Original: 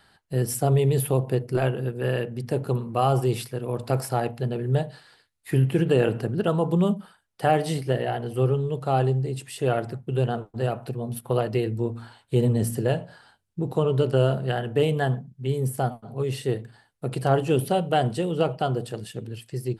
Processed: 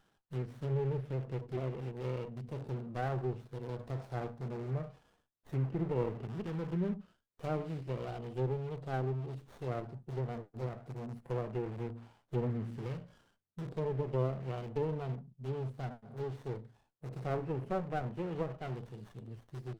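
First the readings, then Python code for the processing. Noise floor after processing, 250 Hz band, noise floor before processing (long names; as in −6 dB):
−77 dBFS, −13.0 dB, −65 dBFS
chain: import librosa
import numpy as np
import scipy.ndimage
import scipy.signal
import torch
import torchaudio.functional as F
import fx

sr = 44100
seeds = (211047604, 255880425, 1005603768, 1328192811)

p1 = fx.hpss(x, sr, part='percussive', gain_db=-10)
p2 = (np.mod(10.0 ** (26.5 / 20.0) * p1 + 1.0, 2.0) - 1.0) / 10.0 ** (26.5 / 20.0)
p3 = p1 + F.gain(torch.from_numpy(p2), -9.0).numpy()
p4 = scipy.signal.sosfilt(scipy.signal.butter(2, 100.0, 'highpass', fs=sr, output='sos'), p3)
p5 = fx.low_shelf(p4, sr, hz=370.0, db=-4.0)
p6 = fx.filter_lfo_notch(p5, sr, shape='saw_up', hz=0.16, low_hz=570.0, high_hz=5700.0, q=1.4)
p7 = fx.peak_eq(p6, sr, hz=1200.0, db=-3.0, octaves=0.77)
p8 = fx.env_lowpass_down(p7, sr, base_hz=1400.0, full_db=-23.0)
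p9 = fx.running_max(p8, sr, window=17)
y = F.gain(torch.from_numpy(p9), -8.0).numpy()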